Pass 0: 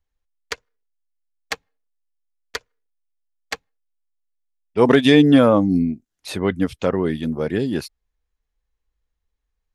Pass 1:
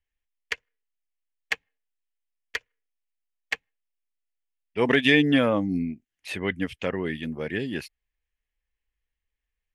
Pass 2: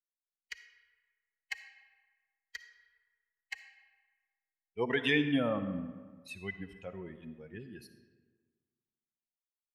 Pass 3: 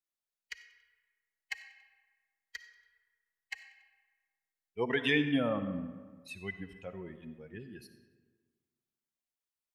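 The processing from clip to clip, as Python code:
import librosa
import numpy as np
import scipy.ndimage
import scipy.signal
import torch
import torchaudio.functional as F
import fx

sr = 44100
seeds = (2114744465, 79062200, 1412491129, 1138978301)

y1 = fx.band_shelf(x, sr, hz=2300.0, db=11.0, octaves=1.1)
y1 = F.gain(torch.from_numpy(y1), -8.5).numpy()
y2 = fx.bin_expand(y1, sr, power=2.0)
y2 = fx.rev_freeverb(y2, sr, rt60_s=1.5, hf_ratio=0.6, predelay_ms=15, drr_db=9.5)
y2 = F.gain(torch.from_numpy(y2), -7.0).numpy()
y3 = fx.echo_feedback(y2, sr, ms=94, feedback_pct=47, wet_db=-22)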